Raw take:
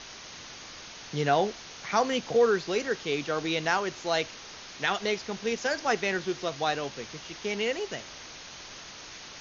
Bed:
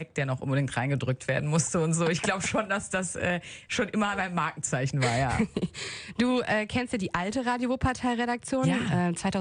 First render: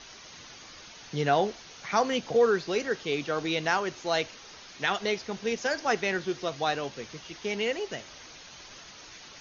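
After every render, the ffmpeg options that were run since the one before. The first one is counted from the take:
-af "afftdn=nr=6:nf=-45"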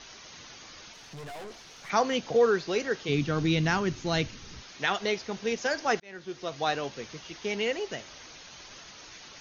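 -filter_complex "[0:a]asettb=1/sr,asplit=3[a][b][c];[a]atrim=end=0.934[d];[b]atrim=start=0.93:end=1.9,asetpts=PTS-STARTPTS,afade=t=in:d=0.004:c=qsin,afade=t=out:st=0.966:d=0.004:c=qsin,aeval=exprs='(tanh(100*val(0)+0.3)-tanh(0.3))/100':c=same[e];[c]atrim=start=1.896[f];[d][e]acrossfade=d=0.004:c1=hsin:c2=qsin[g];[g][f]acrossfade=d=0.004:c1=qsin:c2=hsin,asplit=3[h][i][j];[h]afade=t=out:st=3.08:d=0.02[k];[i]asubboost=boost=9:cutoff=210,afade=t=in:st=3.08:d=0.02,afade=t=out:st=4.61:d=0.02[l];[j]afade=t=in:st=4.61:d=0.02[m];[k][l][m]amix=inputs=3:normalize=0,asplit=2[n][o];[n]atrim=end=6,asetpts=PTS-STARTPTS,afade=t=out:st=5.996:d=0.004:c=hsin[p];[o]atrim=start=6,asetpts=PTS-STARTPTS,afade=t=in:d=0.68[q];[p][q]concat=n=2:v=0:a=1"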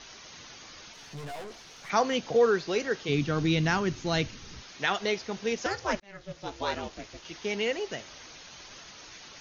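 -filter_complex "[0:a]asettb=1/sr,asplit=3[a][b][c];[a]atrim=end=0.964[d];[b]atrim=start=0.96:end=1.42,asetpts=PTS-STARTPTS,afade=t=in:d=0.004:c=qsin,afade=t=out:st=0.456:d=0.004:c=qsin,asplit=2[e][f];[f]adelay=14,volume=-6dB[g];[e][g]amix=inputs=2:normalize=0,atrim=end_sample=20286[h];[c]atrim=start=1.416[i];[d][h]acrossfade=d=0.004:c1=hsin:c2=qsin[j];[j][i]acrossfade=d=0.004:c1=qsin:c2=hsin,asettb=1/sr,asplit=3[k][l][m];[k]atrim=end=5.664[n];[l]atrim=start=5.66:end=7.25,asetpts=PTS-STARTPTS,afade=t=in:d=0.004:c=qsin,afade=t=out:st=1.586:d=0.004:c=qsin,aeval=exprs='val(0)*sin(2*PI*200*n/s)':c=same[o];[m]atrim=start=7.246[p];[n][o]acrossfade=d=0.004:c1=hsin:c2=qsin[q];[q][p]acrossfade=d=0.004:c1=qsin:c2=hsin"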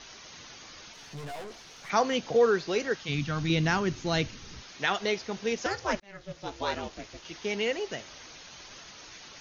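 -filter_complex "[0:a]asettb=1/sr,asplit=3[a][b][c];[a]atrim=end=2.944[d];[b]atrim=start=2.94:end=3.5,asetpts=PTS-STARTPTS,afade=t=in:d=0.004:c=qsin,afade=t=out:st=0.556:d=0.004:c=qsin,equalizer=f=400:t=o:w=0.77:g=-13.5[e];[c]atrim=start=3.496[f];[d][e]acrossfade=d=0.004:c1=hsin:c2=qsin[g];[g][f]acrossfade=d=0.004:c1=qsin:c2=hsin"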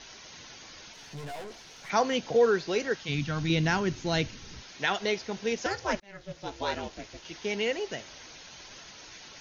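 -af "bandreject=f=1.2k:w=12"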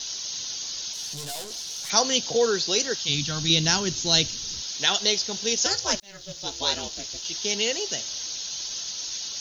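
-af "aexciter=amount=8.3:drive=3.8:freq=3.2k"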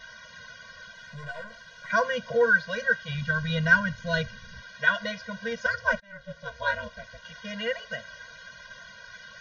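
-af "lowpass=f=1.6k:t=q:w=7.2,afftfilt=real='re*eq(mod(floor(b*sr/1024/230),2),0)':imag='im*eq(mod(floor(b*sr/1024/230),2),0)':win_size=1024:overlap=0.75"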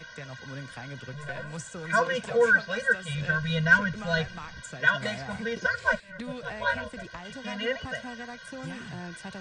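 -filter_complex "[1:a]volume=-13.5dB[a];[0:a][a]amix=inputs=2:normalize=0"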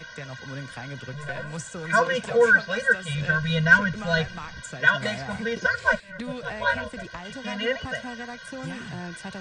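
-af "volume=3.5dB"

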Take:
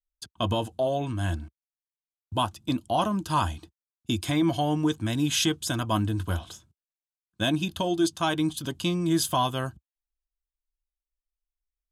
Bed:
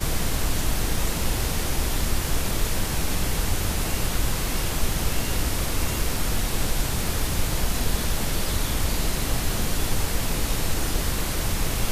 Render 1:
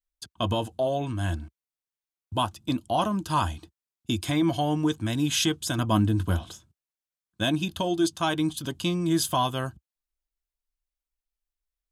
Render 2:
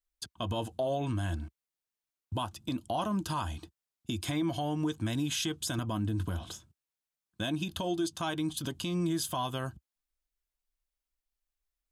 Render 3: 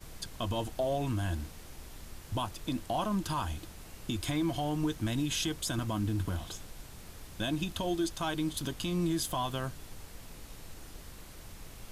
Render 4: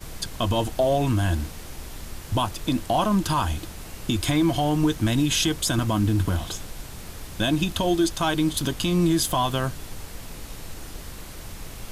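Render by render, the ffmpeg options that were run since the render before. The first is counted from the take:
-filter_complex "[0:a]asettb=1/sr,asplit=3[a][b][c];[a]atrim=end=5.784[d];[b]atrim=start=5.78:end=6.52,asetpts=PTS-STARTPTS,afade=t=in:d=0.004:c=qsin,afade=t=out:st=0.736:d=0.004:c=qsin,equalizer=f=190:w=0.57:g=5.5[e];[c]atrim=start=6.516[f];[d][e]acrossfade=d=0.004:c1=hsin:c2=qsin[g];[g][f]acrossfade=d=0.004:c1=qsin:c2=hsin"
-af "acompressor=threshold=-26dB:ratio=6,alimiter=limit=-23dB:level=0:latency=1:release=117"
-filter_complex "[1:a]volume=-23dB[a];[0:a][a]amix=inputs=2:normalize=0"
-af "volume=10dB"

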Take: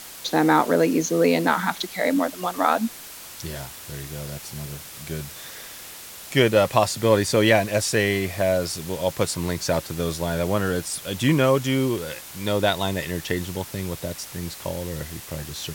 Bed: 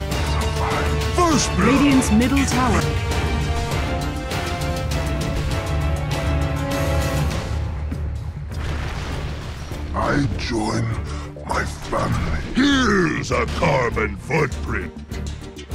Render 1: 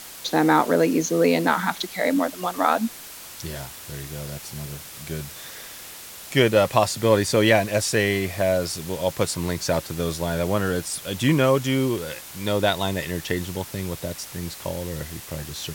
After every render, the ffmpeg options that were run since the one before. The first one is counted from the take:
-af anull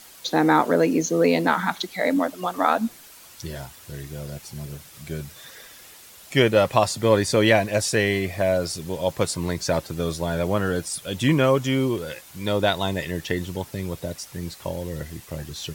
-af "afftdn=nr=8:nf=-40"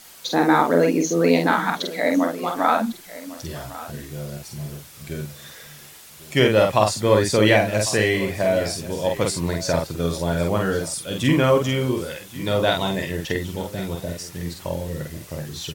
-filter_complex "[0:a]asplit=2[a][b];[b]adelay=47,volume=-3.5dB[c];[a][c]amix=inputs=2:normalize=0,aecho=1:1:1101:0.141"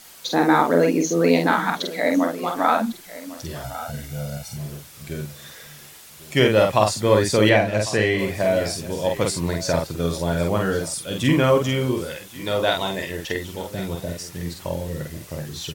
-filter_complex "[0:a]asettb=1/sr,asplit=3[a][b][c];[a]atrim=end=3.644[d];[b]atrim=start=3.64:end=4.57,asetpts=PTS-STARTPTS,afade=t=in:d=0.004:c=qsin,afade=t=out:st=0.926:d=0.004:c=qsin,aecho=1:1:1.4:0.75,atrim=end_sample=41013[e];[c]atrim=start=4.566[f];[d][e]acrossfade=d=0.004:c1=hsin:c2=qsin[g];[g][f]acrossfade=d=0.004:c1=qsin:c2=hsin,asettb=1/sr,asplit=3[h][i][j];[h]atrim=end=7.494[k];[i]atrim=start=7.49:end=8.19,asetpts=PTS-STARTPTS,afade=t=in:d=0.004:c=qsin,afade=t=out:st=0.696:d=0.004:c=qsin,highshelf=f=7.1k:g=-11.5[l];[j]atrim=start=8.186[m];[k][l]acrossfade=d=0.004:c1=hsin:c2=qsin[n];[n][m]acrossfade=d=0.004:c1=qsin:c2=hsin,asettb=1/sr,asplit=3[o][p][q];[o]atrim=end=12.284[r];[p]atrim=start=12.28:end=13.71,asetpts=PTS-STARTPTS,afade=t=in:d=0.004:c=qsin,afade=t=out:st=1.426:d=0.004:c=qsin,equalizer=f=140:t=o:w=1.8:g=-7.5[s];[q]atrim=start=13.706[t];[r][s]acrossfade=d=0.004:c1=hsin:c2=qsin[u];[u][t]acrossfade=d=0.004:c1=qsin:c2=hsin"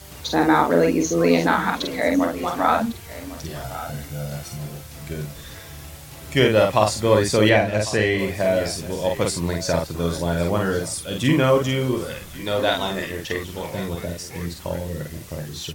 -filter_complex "[1:a]volume=-19dB[a];[0:a][a]amix=inputs=2:normalize=0"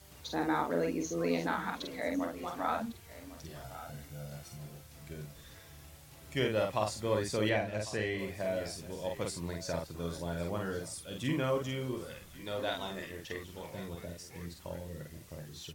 -af "volume=-14.5dB"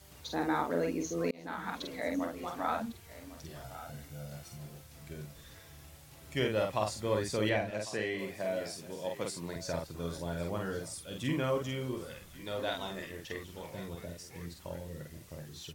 -filter_complex "[0:a]asettb=1/sr,asplit=3[a][b][c];[a]atrim=end=4.274[d];[b]atrim=start=4.27:end=4.84,asetpts=PTS-STARTPTS,afade=t=in:d=0.004:c=qsin,afade=t=out:st=0.566:d=0.004:c=qsin,aeval=exprs='val(0)*gte(abs(val(0)),0.00119)':c=same[e];[c]atrim=start=4.836[f];[d][e]acrossfade=d=0.004:c1=hsin:c2=qsin[g];[g][f]acrossfade=d=0.004:c1=qsin:c2=hsin,asettb=1/sr,asplit=3[h][i][j];[h]atrim=end=7.704[k];[i]atrim=start=7.7:end=9.56,asetpts=PTS-STARTPTS,afade=t=in:d=0.004:c=qsin,afade=t=out:st=1.856:d=0.004:c=qsin,highpass=150[l];[j]atrim=start=9.556[m];[k][l]acrossfade=d=0.004:c1=hsin:c2=qsin[n];[n][m]acrossfade=d=0.004:c1=qsin:c2=hsin,asplit=2[o][p];[o]atrim=end=1.31,asetpts=PTS-STARTPTS,afade=t=out:st=1.306:d=0.004:c=hsin[q];[p]atrim=start=1.31,asetpts=PTS-STARTPTS,afade=t=in:d=0.45[r];[q][r]concat=n=2:v=0:a=1"

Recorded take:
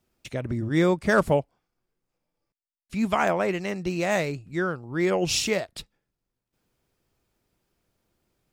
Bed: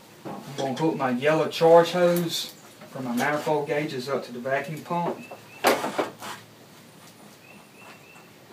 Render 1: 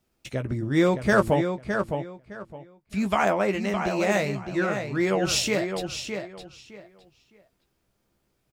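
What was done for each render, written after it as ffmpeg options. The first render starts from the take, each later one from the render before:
-filter_complex "[0:a]asplit=2[a][b];[b]adelay=15,volume=-8dB[c];[a][c]amix=inputs=2:normalize=0,asplit=2[d][e];[e]adelay=612,lowpass=f=4.8k:p=1,volume=-6.5dB,asplit=2[f][g];[g]adelay=612,lowpass=f=4.8k:p=1,volume=0.23,asplit=2[h][i];[i]adelay=612,lowpass=f=4.8k:p=1,volume=0.23[j];[d][f][h][j]amix=inputs=4:normalize=0"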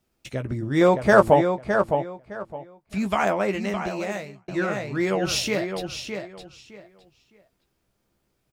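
-filter_complex "[0:a]asettb=1/sr,asplit=3[a][b][c];[a]atrim=end=0.814[d];[b]atrim=start=0.81:end=2.98,asetpts=PTS-STARTPTS,afade=t=in:d=0.004:c=qsin,afade=t=out:st=2.166:d=0.004:c=qsin,equalizer=f=760:t=o:w=1.5:g=9[e];[c]atrim=start=2.976[f];[d][e]acrossfade=d=0.004:c1=hsin:c2=qsin[g];[g][f]acrossfade=d=0.004:c1=qsin:c2=hsin,asettb=1/sr,asplit=3[h][i][j];[h]atrim=end=5.174[k];[i]atrim=start=5.17:end=6.15,asetpts=PTS-STARTPTS,afade=t=in:d=0.004:c=qsin,afade=t=out:st=0.976:d=0.004:c=qsin,equalizer=f=7.6k:w=5:g=-8.5[l];[j]atrim=start=6.146[m];[k][l]acrossfade=d=0.004:c1=hsin:c2=qsin[n];[n][m]acrossfade=d=0.004:c1=qsin:c2=hsin,asplit=2[o][p];[o]atrim=end=4.48,asetpts=PTS-STARTPTS,afade=t=out:st=3.68:d=0.8[q];[p]atrim=start=4.48,asetpts=PTS-STARTPTS,afade=t=in:d=0.004:c=hsin[r];[q][r]concat=n=2:v=0:a=1"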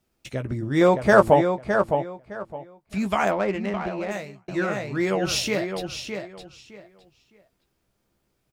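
-filter_complex "[0:a]asettb=1/sr,asplit=3[a][b][c];[a]atrim=end=3.314[d];[b]atrim=start=3.31:end=4.11,asetpts=PTS-STARTPTS,afade=t=in:d=0.004:c=qsin,afade=t=out:st=0.796:d=0.004:c=qsin,adynamicsmooth=sensitivity=2:basefreq=2.2k[e];[c]atrim=start=4.106[f];[d][e]acrossfade=d=0.004:c1=hsin:c2=qsin[g];[g][f]acrossfade=d=0.004:c1=qsin:c2=hsin"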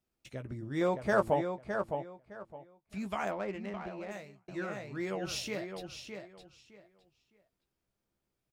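-af "volume=-12.5dB"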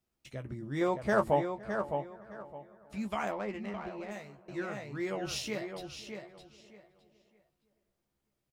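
-filter_complex "[0:a]asplit=2[a][b];[b]adelay=14,volume=-8dB[c];[a][c]amix=inputs=2:normalize=0,asplit=2[d][e];[e]adelay=513,lowpass=f=1.9k:p=1,volume=-20dB,asplit=2[f][g];[g]adelay=513,lowpass=f=1.9k:p=1,volume=0.46,asplit=2[h][i];[i]adelay=513,lowpass=f=1.9k:p=1,volume=0.46[j];[d][f][h][j]amix=inputs=4:normalize=0"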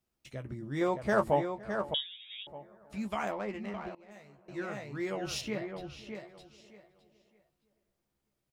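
-filter_complex "[0:a]asettb=1/sr,asplit=3[a][b][c];[a]atrim=end=1.944[d];[b]atrim=start=1.94:end=2.47,asetpts=PTS-STARTPTS,afade=t=in:d=0.004:c=qsin,afade=t=out:st=0.526:d=0.004:c=qsin,lowpass=f=3.3k:t=q:w=0.5098,lowpass=f=3.3k:t=q:w=0.6013,lowpass=f=3.3k:t=q:w=0.9,lowpass=f=3.3k:t=q:w=2.563,afreqshift=-3900[e];[c]atrim=start=2.466[f];[d][e]acrossfade=d=0.004:c1=hsin:c2=qsin[g];[g][f]acrossfade=d=0.004:c1=qsin:c2=hsin,asettb=1/sr,asplit=3[h][i][j];[h]atrim=end=5.414[k];[i]atrim=start=5.41:end=6.15,asetpts=PTS-STARTPTS,afade=t=in:d=0.004:c=qsin,afade=t=out:st=0.736:d=0.004:c=qsin,bass=f=250:g=4,treble=f=4k:g=-11[l];[j]atrim=start=6.146[m];[k][l]acrossfade=d=0.004:c1=hsin:c2=qsin[n];[n][m]acrossfade=d=0.004:c1=qsin:c2=hsin,asplit=2[o][p];[o]atrim=end=3.95,asetpts=PTS-STARTPTS,afade=t=out:st=3.946:d=0.004:c=hsin:silence=0.0794328[q];[p]atrim=start=3.95,asetpts=PTS-STARTPTS,afade=t=in:d=0.74:silence=0.0794328[r];[q][r]concat=n=2:v=0:a=1"

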